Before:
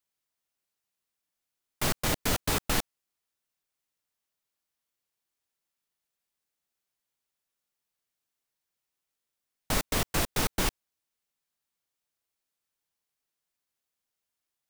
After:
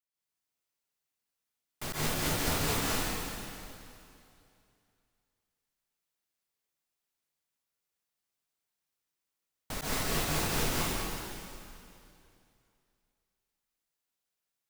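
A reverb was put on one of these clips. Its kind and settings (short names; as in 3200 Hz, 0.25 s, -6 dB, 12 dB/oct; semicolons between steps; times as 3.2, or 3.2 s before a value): plate-style reverb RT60 2.6 s, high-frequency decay 0.95×, pre-delay 0.11 s, DRR -9 dB; gain -10.5 dB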